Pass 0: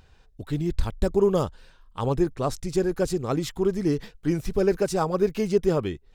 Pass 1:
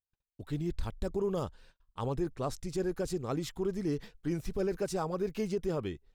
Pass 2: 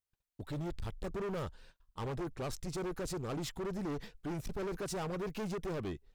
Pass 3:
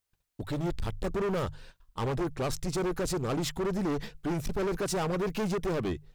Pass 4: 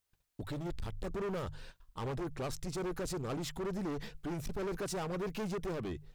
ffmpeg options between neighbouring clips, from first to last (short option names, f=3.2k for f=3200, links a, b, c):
-af "agate=range=-42dB:threshold=-49dB:ratio=16:detection=peak,alimiter=limit=-16dB:level=0:latency=1:release=28,volume=-7.5dB"
-af "asoftclip=type=hard:threshold=-36.5dB,volume=1dB"
-af "bandreject=f=50:t=h:w=6,bandreject=f=100:t=h:w=6,bandreject=f=150:t=h:w=6,volume=8dB"
-af "alimiter=level_in=9.5dB:limit=-24dB:level=0:latency=1:release=87,volume=-9.5dB"